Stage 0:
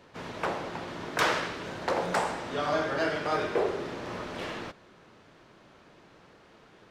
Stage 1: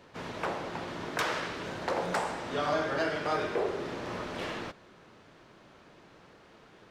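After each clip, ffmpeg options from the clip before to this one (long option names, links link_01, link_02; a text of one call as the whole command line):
ffmpeg -i in.wav -af "alimiter=limit=-19dB:level=0:latency=1:release=374" out.wav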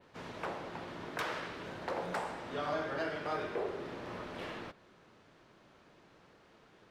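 ffmpeg -i in.wav -af "adynamicequalizer=threshold=0.00141:dfrequency=6700:dqfactor=1:tfrequency=6700:tqfactor=1:attack=5:release=100:ratio=0.375:range=2.5:mode=cutabove:tftype=bell,volume=-6dB" out.wav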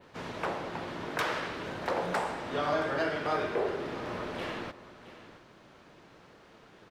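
ffmpeg -i in.wav -af "aecho=1:1:670:0.168,volume=6dB" out.wav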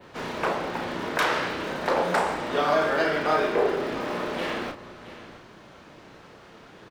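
ffmpeg -i in.wav -filter_complex "[0:a]acrossover=split=150[link_01][link_02];[link_01]aeval=exprs='(mod(282*val(0)+1,2)-1)/282':channel_layout=same[link_03];[link_03][link_02]amix=inputs=2:normalize=0,asplit=2[link_04][link_05];[link_05]adelay=33,volume=-6dB[link_06];[link_04][link_06]amix=inputs=2:normalize=0,volume=6.5dB" out.wav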